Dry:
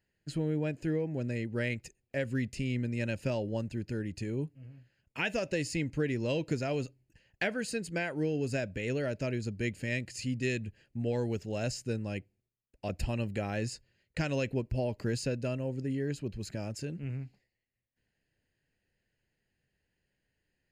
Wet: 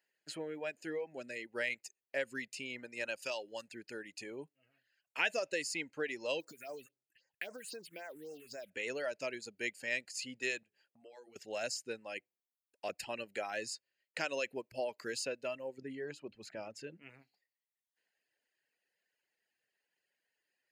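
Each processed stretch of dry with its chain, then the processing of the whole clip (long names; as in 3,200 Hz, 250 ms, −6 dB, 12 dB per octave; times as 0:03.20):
0:03.22–0:03.68: tilt shelving filter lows −6 dB, about 1,300 Hz + notch filter 2,100 Hz, Q 13
0:06.40–0:08.71: one scale factor per block 5 bits + downward compressor 8 to 1, threshold −35 dBFS + all-pass phaser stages 4, 3.8 Hz, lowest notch 760–3,200 Hz
0:10.63–0:11.36: mains-hum notches 60/120/180/240/300/360/420/480 Hz + downward compressor 8 to 1, threshold −46 dBFS
0:15.78–0:17.02: low-pass filter 2,400 Hz 6 dB per octave + low-shelf EQ 180 Hz +8.5 dB + mains-hum notches 60/120/180/240/300 Hz
whole clip: high-pass filter 580 Hz 12 dB per octave; reverb reduction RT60 0.97 s; level +1 dB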